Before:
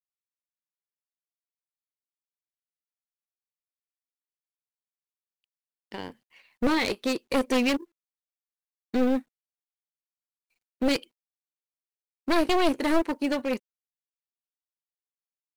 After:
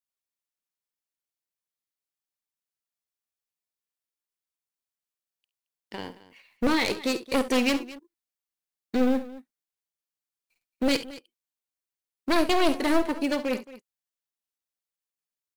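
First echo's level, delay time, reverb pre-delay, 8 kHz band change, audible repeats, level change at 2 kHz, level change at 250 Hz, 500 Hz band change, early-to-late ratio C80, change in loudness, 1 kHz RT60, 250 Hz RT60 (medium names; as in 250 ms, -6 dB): -15.5 dB, 51 ms, no reverb, +3.0 dB, 2, +1.0 dB, +0.5 dB, +0.5 dB, no reverb, +0.5 dB, no reverb, no reverb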